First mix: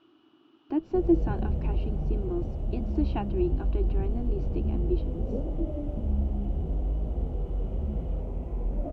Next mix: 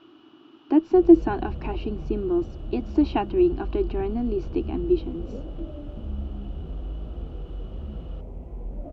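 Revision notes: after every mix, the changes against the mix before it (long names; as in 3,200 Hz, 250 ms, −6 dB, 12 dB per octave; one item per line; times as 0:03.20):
speech +9.0 dB
background −4.5 dB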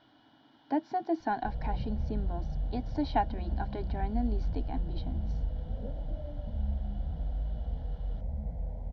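background: entry +0.50 s
master: add phaser with its sweep stopped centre 1,800 Hz, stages 8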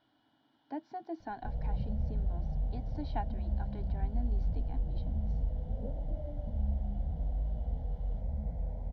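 speech −10.0 dB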